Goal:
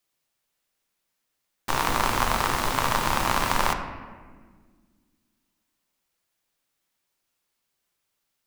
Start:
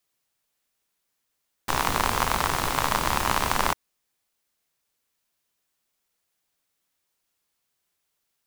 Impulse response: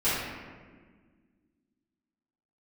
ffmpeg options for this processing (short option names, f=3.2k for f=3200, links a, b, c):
-filter_complex "[0:a]asplit=2[a][b];[1:a]atrim=start_sample=2205,lowpass=7.6k[c];[b][c]afir=irnorm=-1:irlink=0,volume=-17dB[d];[a][d]amix=inputs=2:normalize=0,volume=-1.5dB"